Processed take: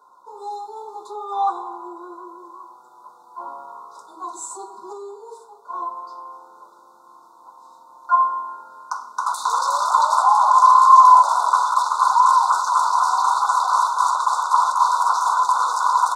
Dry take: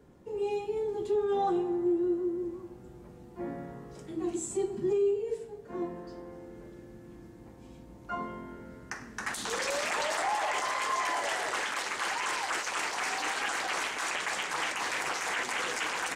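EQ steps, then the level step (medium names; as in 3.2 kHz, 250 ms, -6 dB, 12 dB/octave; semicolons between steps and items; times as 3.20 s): resonant high-pass 1 kHz, resonance Q 12; brick-wall FIR band-stop 1.5–3.5 kHz; +5.0 dB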